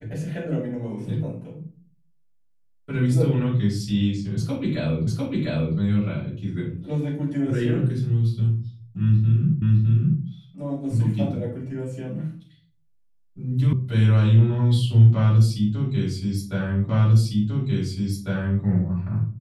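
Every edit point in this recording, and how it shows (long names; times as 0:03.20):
0:05.07: the same again, the last 0.7 s
0:09.62: the same again, the last 0.61 s
0:13.73: cut off before it has died away
0:16.89: the same again, the last 1.75 s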